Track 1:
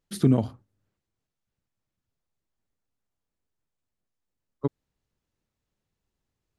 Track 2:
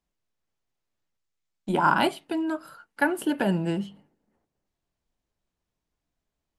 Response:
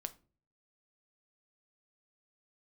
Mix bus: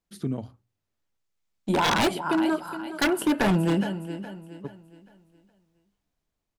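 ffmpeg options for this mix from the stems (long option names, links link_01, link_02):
-filter_complex "[0:a]volume=-9.5dB[link_01];[1:a]dynaudnorm=framelen=390:gausssize=7:maxgain=11.5dB,volume=-2.5dB,asplit=2[link_02][link_03];[link_03]volume=-12.5dB,aecho=0:1:416|832|1248|1664|2080:1|0.37|0.137|0.0507|0.0187[link_04];[link_01][link_02][link_04]amix=inputs=3:normalize=0,bandreject=frequency=60:width_type=h:width=6,bandreject=frequency=120:width_type=h:width=6,aeval=exprs='0.158*(abs(mod(val(0)/0.158+3,4)-2)-1)':channel_layout=same"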